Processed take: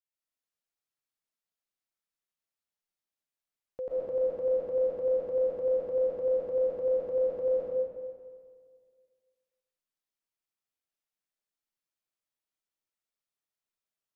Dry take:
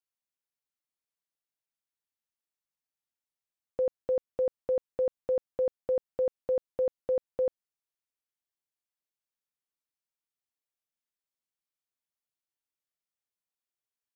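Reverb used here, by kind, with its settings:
comb and all-pass reverb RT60 1.9 s, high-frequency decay 0.8×, pre-delay 85 ms, DRR −8.5 dB
level −8.5 dB

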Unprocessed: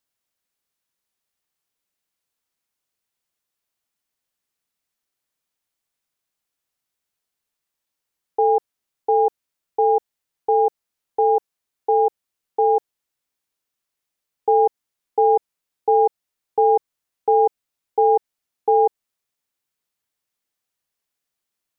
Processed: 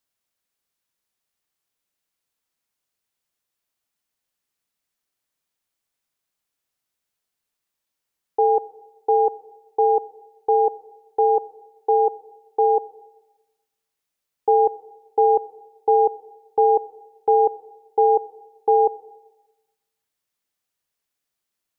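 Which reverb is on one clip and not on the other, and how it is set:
comb and all-pass reverb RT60 1.1 s, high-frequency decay 0.8×, pre-delay 5 ms, DRR 17 dB

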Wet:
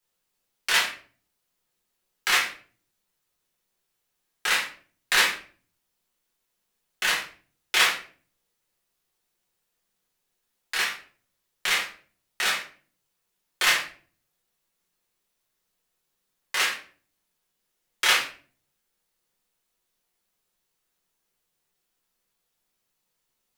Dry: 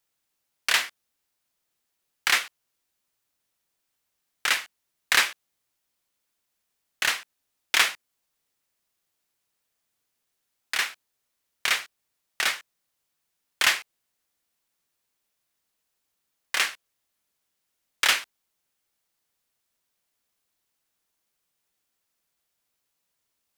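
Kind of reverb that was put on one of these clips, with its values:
rectangular room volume 35 cubic metres, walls mixed, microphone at 1 metre
level −4.5 dB

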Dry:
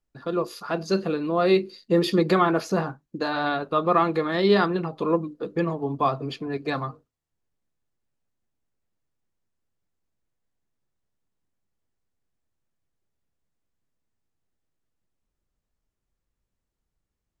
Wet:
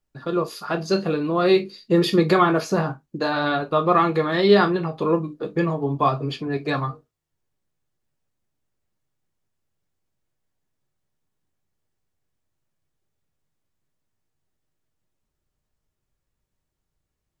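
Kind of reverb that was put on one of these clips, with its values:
reverb whose tail is shaped and stops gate 80 ms falling, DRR 6.5 dB
level +2.5 dB

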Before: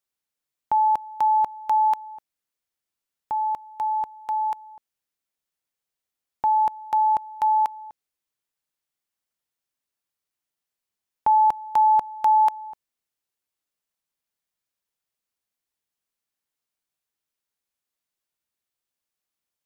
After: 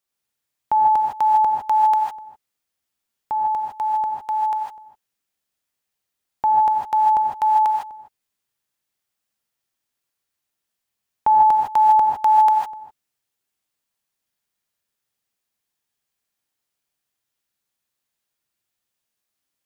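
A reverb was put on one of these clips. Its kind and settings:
reverb whose tail is shaped and stops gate 180 ms rising, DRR 0 dB
level +2.5 dB

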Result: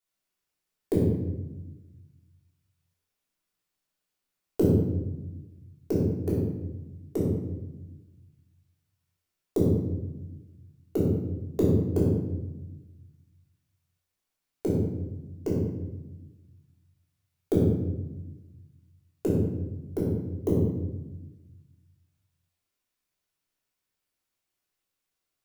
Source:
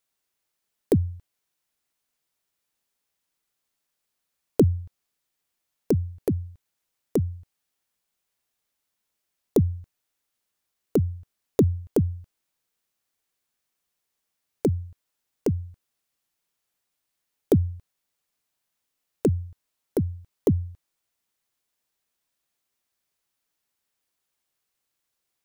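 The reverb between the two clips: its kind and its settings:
rectangular room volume 510 cubic metres, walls mixed, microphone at 3.3 metres
level −10.5 dB

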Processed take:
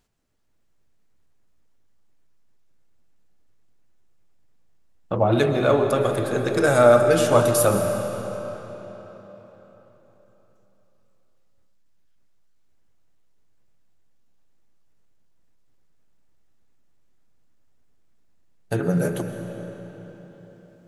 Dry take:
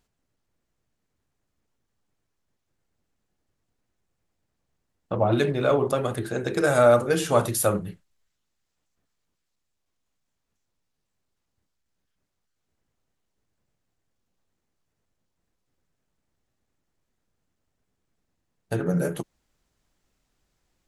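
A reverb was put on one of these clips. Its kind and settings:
comb and all-pass reverb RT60 4.3 s, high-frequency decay 0.8×, pre-delay 85 ms, DRR 6 dB
level +2.5 dB

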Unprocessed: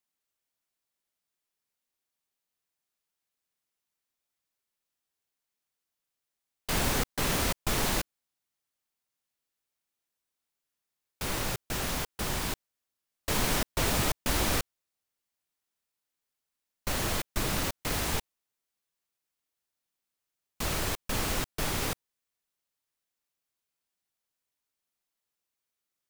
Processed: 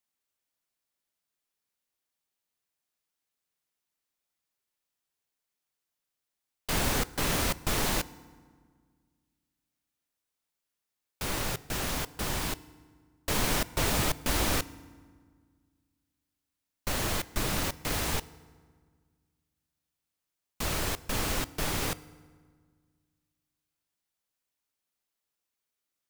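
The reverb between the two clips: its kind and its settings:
feedback delay network reverb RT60 1.7 s, low-frequency decay 1.35×, high-frequency decay 0.65×, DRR 17.5 dB

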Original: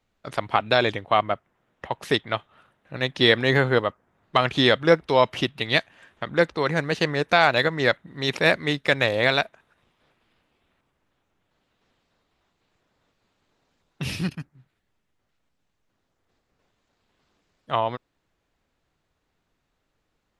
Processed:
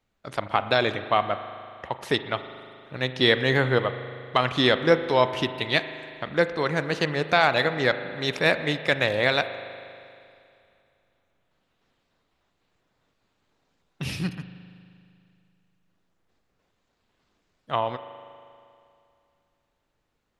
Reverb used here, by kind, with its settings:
spring reverb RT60 2.5 s, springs 39 ms, chirp 25 ms, DRR 10.5 dB
level −2 dB

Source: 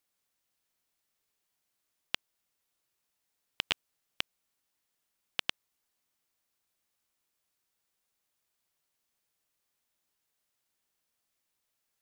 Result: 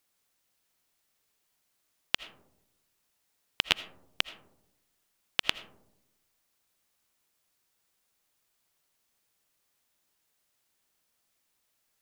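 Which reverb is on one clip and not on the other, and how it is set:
comb and all-pass reverb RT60 0.84 s, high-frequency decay 0.25×, pre-delay 40 ms, DRR 14 dB
level +5.5 dB

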